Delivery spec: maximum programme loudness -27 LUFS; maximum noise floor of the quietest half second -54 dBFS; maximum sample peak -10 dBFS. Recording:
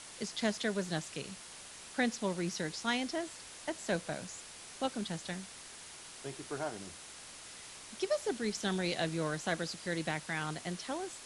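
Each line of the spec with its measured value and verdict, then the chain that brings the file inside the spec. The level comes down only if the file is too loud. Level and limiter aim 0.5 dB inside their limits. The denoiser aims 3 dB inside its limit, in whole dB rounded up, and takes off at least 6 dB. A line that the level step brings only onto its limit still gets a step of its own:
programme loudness -37.5 LUFS: pass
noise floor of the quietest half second -50 dBFS: fail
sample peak -17.0 dBFS: pass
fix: noise reduction 7 dB, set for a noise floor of -50 dBFS

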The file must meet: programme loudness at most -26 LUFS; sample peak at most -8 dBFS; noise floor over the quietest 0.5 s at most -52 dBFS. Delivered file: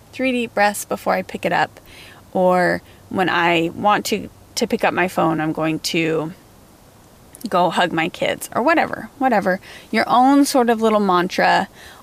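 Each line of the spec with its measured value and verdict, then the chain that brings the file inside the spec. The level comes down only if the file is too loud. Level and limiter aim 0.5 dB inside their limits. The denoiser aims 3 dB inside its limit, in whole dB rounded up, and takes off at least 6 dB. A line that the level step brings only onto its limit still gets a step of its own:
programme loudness -18.5 LUFS: fail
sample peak -5.5 dBFS: fail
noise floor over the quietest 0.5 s -47 dBFS: fail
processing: trim -8 dB

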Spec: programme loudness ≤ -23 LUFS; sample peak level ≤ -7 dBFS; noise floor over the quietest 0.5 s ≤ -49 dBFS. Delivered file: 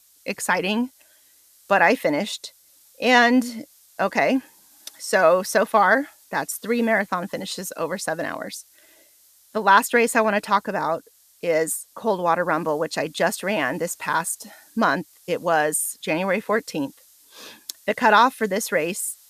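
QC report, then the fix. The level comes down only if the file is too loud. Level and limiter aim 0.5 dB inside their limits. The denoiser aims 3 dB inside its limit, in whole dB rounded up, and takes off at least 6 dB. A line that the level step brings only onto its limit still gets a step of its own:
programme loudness -22.0 LUFS: fail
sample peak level -4.0 dBFS: fail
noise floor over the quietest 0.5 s -56 dBFS: pass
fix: trim -1.5 dB; peak limiter -7.5 dBFS

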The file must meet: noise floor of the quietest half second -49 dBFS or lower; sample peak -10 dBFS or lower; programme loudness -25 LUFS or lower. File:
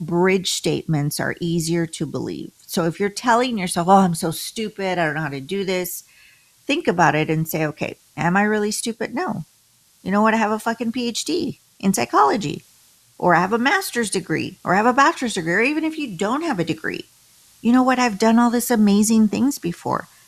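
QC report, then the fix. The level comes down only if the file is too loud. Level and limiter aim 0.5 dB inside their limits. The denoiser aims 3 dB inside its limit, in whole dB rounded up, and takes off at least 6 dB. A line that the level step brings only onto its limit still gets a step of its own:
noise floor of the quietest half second -57 dBFS: pass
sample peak -2.5 dBFS: fail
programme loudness -20.0 LUFS: fail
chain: trim -5.5 dB; peak limiter -10.5 dBFS

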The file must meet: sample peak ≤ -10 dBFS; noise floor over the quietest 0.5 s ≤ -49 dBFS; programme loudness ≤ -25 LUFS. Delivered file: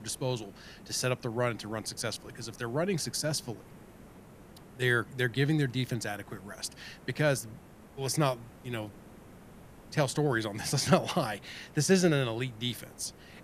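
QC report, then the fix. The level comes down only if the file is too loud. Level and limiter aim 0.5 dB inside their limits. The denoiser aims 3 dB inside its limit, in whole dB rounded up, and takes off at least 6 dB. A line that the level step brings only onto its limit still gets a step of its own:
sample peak -8.5 dBFS: fail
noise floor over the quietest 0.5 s -52 dBFS: pass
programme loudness -31.5 LUFS: pass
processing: peak limiter -10.5 dBFS

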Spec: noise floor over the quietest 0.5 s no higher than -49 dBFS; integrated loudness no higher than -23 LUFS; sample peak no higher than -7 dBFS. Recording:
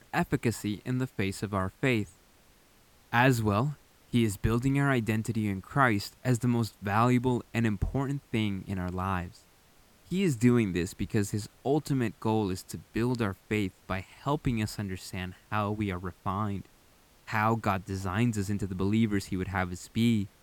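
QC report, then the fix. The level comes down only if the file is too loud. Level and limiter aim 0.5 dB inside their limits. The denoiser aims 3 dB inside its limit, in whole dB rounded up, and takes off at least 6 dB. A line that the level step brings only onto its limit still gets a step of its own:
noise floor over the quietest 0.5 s -61 dBFS: pass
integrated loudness -30.0 LUFS: pass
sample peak -8.5 dBFS: pass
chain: none needed

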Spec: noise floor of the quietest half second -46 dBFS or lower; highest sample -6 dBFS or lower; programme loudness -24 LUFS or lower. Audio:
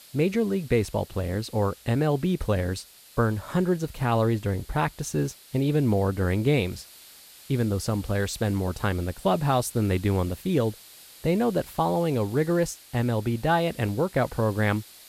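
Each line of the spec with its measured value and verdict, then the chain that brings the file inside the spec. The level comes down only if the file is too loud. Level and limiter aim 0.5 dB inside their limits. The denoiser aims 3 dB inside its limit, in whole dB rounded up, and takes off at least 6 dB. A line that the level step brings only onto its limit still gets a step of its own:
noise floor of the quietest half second -49 dBFS: pass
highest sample -10.5 dBFS: pass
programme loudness -26.0 LUFS: pass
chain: none needed

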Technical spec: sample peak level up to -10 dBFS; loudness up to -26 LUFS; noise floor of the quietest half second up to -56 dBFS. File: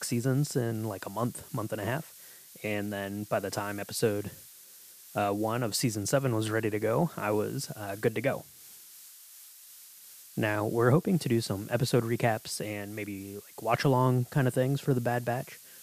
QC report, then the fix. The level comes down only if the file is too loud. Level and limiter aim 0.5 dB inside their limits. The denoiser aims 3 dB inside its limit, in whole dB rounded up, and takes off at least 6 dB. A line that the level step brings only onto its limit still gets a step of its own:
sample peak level -10.5 dBFS: pass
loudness -30.5 LUFS: pass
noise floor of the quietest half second -52 dBFS: fail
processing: noise reduction 7 dB, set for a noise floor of -52 dBFS

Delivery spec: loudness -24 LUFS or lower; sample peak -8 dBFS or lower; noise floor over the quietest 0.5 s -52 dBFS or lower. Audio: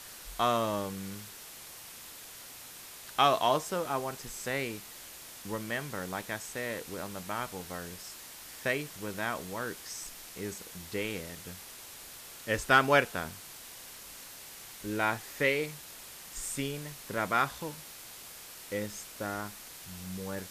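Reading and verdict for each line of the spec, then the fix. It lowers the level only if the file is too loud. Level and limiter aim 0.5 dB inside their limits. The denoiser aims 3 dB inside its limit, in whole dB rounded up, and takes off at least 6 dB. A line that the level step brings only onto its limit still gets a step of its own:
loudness -33.0 LUFS: pass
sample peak -9.5 dBFS: pass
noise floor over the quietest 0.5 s -48 dBFS: fail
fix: noise reduction 7 dB, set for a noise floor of -48 dBFS

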